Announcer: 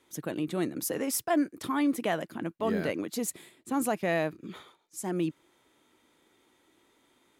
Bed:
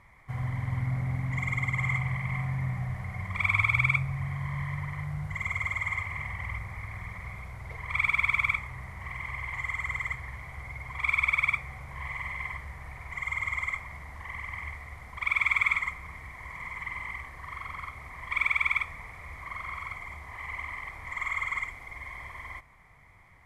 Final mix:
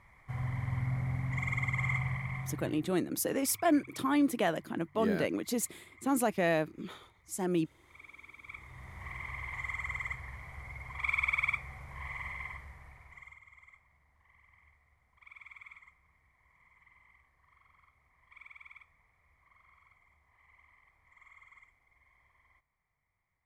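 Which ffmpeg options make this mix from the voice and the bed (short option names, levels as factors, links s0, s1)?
-filter_complex "[0:a]adelay=2350,volume=0.944[s0];[1:a]volume=8.41,afade=t=out:st=2.06:d=0.88:silence=0.0668344,afade=t=in:st=8.44:d=0.56:silence=0.0794328,afade=t=out:st=12.28:d=1.12:silence=0.0841395[s1];[s0][s1]amix=inputs=2:normalize=0"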